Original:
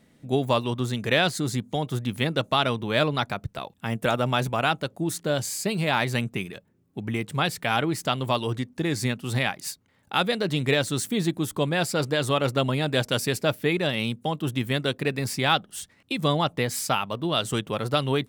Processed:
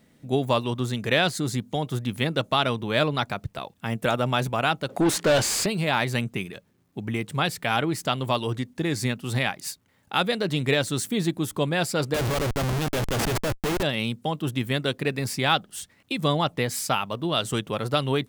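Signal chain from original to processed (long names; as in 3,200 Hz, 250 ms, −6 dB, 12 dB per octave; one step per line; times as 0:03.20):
0:04.89–0:05.66: mid-hump overdrive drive 27 dB, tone 3,300 Hz, clips at −12 dBFS
bit-depth reduction 12 bits, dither none
0:12.14–0:13.83: comparator with hysteresis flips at −28 dBFS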